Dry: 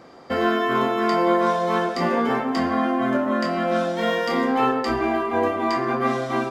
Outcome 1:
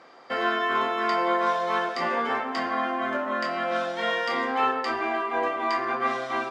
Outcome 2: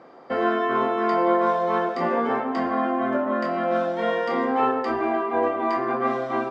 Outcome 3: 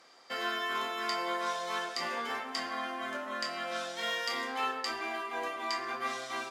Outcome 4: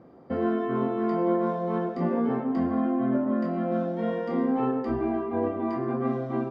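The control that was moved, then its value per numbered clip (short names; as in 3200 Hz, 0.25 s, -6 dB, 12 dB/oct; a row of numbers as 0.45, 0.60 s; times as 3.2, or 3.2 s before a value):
band-pass, frequency: 2000, 710, 7200, 140 Hz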